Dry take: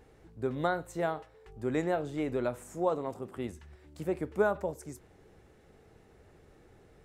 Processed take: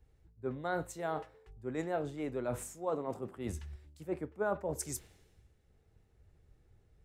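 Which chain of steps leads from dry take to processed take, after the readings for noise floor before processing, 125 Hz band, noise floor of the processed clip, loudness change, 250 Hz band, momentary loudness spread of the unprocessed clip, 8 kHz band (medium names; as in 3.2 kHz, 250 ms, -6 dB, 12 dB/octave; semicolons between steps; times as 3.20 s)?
-60 dBFS, -3.0 dB, -69 dBFS, -5.0 dB, -5.0 dB, 13 LU, +7.5 dB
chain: reverse; compression 4:1, threshold -39 dBFS, peak gain reduction 15 dB; reverse; three bands expanded up and down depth 100%; trim +4 dB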